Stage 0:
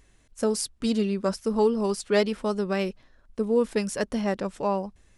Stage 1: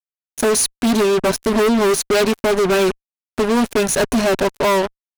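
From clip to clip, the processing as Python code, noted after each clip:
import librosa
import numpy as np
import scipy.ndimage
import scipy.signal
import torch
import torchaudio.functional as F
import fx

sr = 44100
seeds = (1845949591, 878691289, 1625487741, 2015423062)

y = fx.ripple_eq(x, sr, per_octave=1.5, db=13)
y = fx.fuzz(y, sr, gain_db=35.0, gate_db=-36.0)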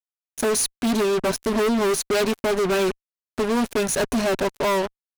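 y = fx.leveller(x, sr, passes=1)
y = y * librosa.db_to_amplitude(-6.5)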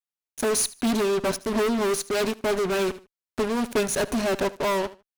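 y = fx.echo_feedback(x, sr, ms=76, feedback_pct=23, wet_db=-17.5)
y = fx.am_noise(y, sr, seeds[0], hz=5.7, depth_pct=65)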